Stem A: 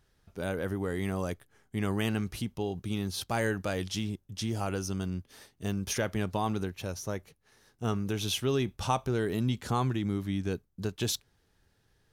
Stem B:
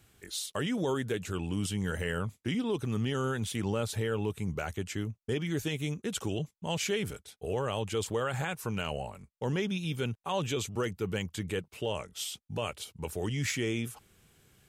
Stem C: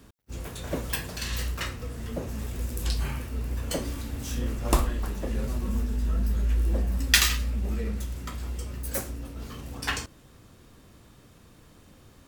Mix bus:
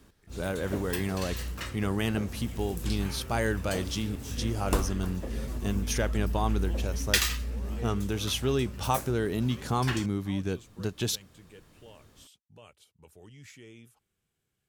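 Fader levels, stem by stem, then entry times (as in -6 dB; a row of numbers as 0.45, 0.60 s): +1.0, -18.5, -5.0 dB; 0.00, 0.00, 0.00 s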